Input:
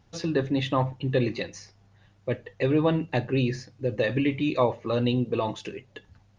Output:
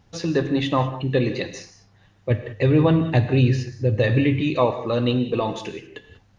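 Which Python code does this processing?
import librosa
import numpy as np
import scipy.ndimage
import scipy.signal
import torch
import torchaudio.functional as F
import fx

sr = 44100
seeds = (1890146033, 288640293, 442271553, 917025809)

y = fx.peak_eq(x, sr, hz=100.0, db=13.5, octaves=0.83, at=(2.3, 4.41))
y = fx.rev_gated(y, sr, seeds[0], gate_ms=220, shape='flat', drr_db=9.0)
y = F.gain(torch.from_numpy(y), 3.5).numpy()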